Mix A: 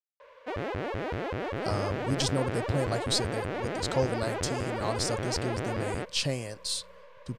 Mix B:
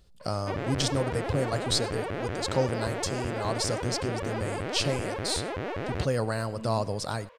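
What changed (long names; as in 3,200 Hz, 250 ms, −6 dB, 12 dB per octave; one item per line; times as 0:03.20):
speech: entry −1.40 s
reverb: on, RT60 0.45 s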